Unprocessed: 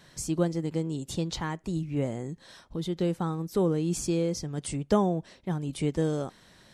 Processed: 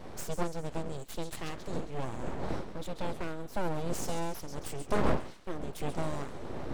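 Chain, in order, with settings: wind noise 340 Hz -33 dBFS; feedback echo behind a high-pass 135 ms, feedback 53%, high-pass 2 kHz, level -10 dB; full-wave rectifier; trim -4 dB

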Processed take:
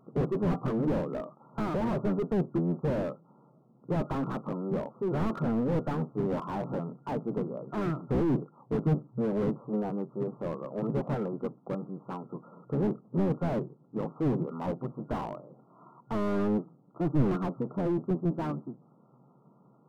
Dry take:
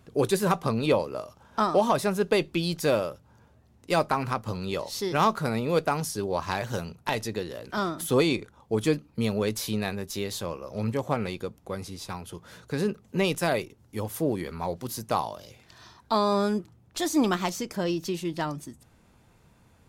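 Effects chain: octave divider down 1 oct, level +3 dB; FFT band-pass 120–1400 Hz; slew-rate limiter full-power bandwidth 19 Hz

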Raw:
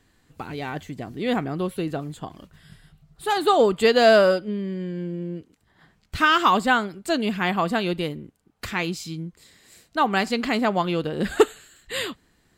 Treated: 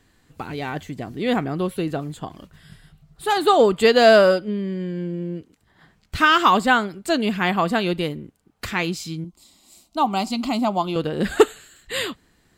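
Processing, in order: 9.24–10.96 s: static phaser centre 460 Hz, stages 6; trim +2.5 dB

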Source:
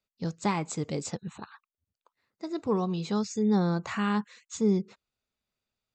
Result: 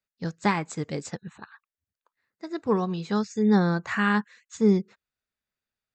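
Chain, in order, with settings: peaking EQ 1.7 kHz +9.5 dB 0.54 oct; upward expansion 1.5:1, over -42 dBFS; trim +5 dB

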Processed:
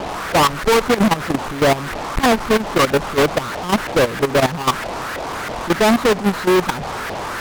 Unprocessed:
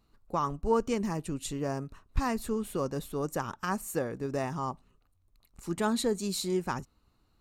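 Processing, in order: word length cut 6-bit, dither triangular; LFO low-pass saw up 3.1 Hz 620–1800 Hz; fuzz box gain 49 dB, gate -50 dBFS; level held to a coarse grid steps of 14 dB; trim +2 dB

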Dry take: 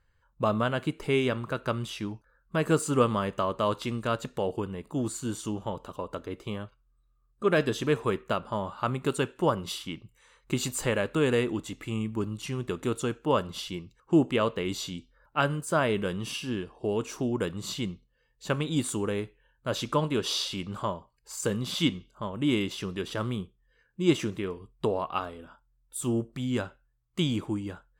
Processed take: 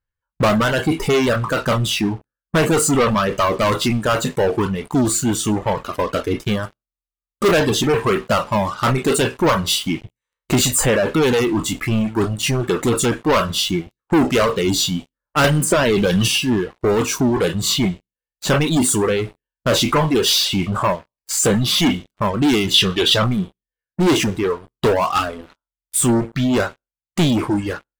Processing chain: spectral sustain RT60 0.33 s; waveshaping leveller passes 5; 22.74–23.24 s: peaking EQ 3.5 kHz +12.5 dB 0.88 oct; waveshaping leveller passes 1; 6.63–7.52 s: treble shelf 6.4 kHz +9.5 dB; reverb removal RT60 1.5 s; 15.44–16.28 s: three bands compressed up and down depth 100%; trim -4 dB

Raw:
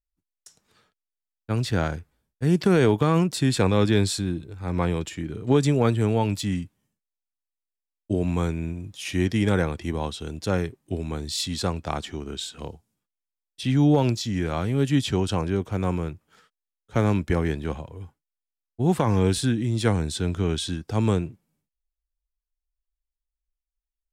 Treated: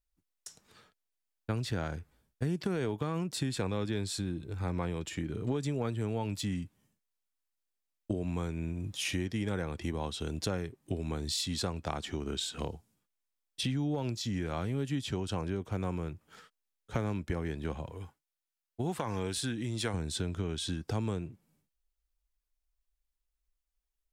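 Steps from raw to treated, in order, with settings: 17.90–19.94 s: bass shelf 440 Hz -8.5 dB; compression 5:1, threshold -34 dBFS, peak gain reduction 17.5 dB; trim +2.5 dB

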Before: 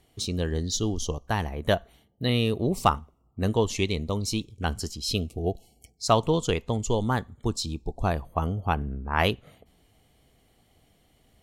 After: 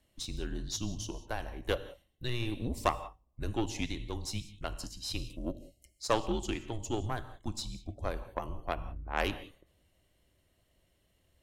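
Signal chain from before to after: gated-style reverb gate 210 ms flat, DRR 11.5 dB; Chebyshev shaper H 4 -15 dB, 6 -33 dB, 7 -36 dB, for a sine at -6.5 dBFS; frequency shift -120 Hz; trim -7.5 dB

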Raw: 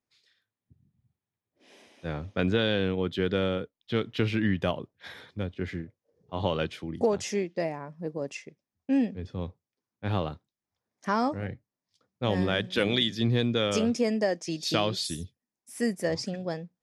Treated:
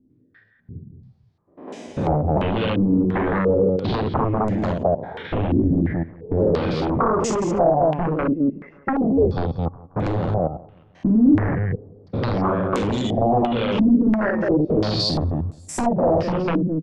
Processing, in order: spectrogram pixelated in time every 100 ms; reverb removal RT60 0.96 s; peak limiter -24.5 dBFS, peak gain reduction 11 dB; loudspeakers at several distances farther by 16 m -3 dB, 73 m -8 dB; compression 16:1, threshold -37 dBFS, peak gain reduction 13.5 dB; tilt shelf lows +9.5 dB, about 940 Hz; sine folder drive 14 dB, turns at -18.5 dBFS; on a send: feedback delay 178 ms, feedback 56%, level -23 dB; on the sum: step-sequenced low-pass 2.9 Hz 280–7400 Hz

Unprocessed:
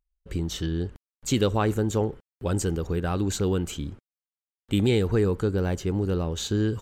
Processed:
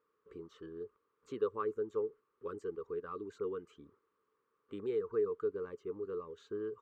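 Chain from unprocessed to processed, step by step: reverb removal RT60 0.53 s; added noise pink -63 dBFS; two resonant band-passes 710 Hz, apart 1.4 oct; trim -4.5 dB

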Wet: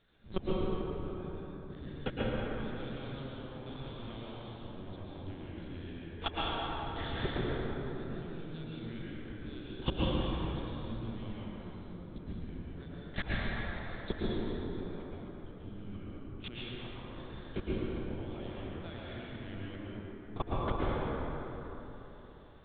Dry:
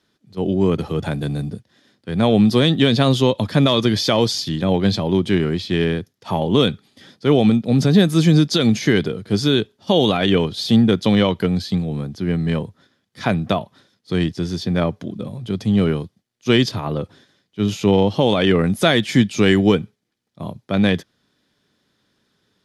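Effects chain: dynamic bell 480 Hz, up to -6 dB, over -29 dBFS, Q 1.9; in parallel at -1.5 dB: compression 6:1, threshold -25 dBFS, peak gain reduction 15 dB; on the sum: waveshaping leveller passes 2; de-hum 70.33 Hz, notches 9; inverted gate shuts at -12 dBFS, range -36 dB; on a send: echo whose repeats swap between lows and highs 130 ms, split 2.2 kHz, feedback 52%, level -7 dB; on the sum: LPC vocoder at 8 kHz pitch kept; plate-style reverb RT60 3.8 s, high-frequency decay 0.45×, pre-delay 100 ms, DRR -7 dB; trim -4.5 dB

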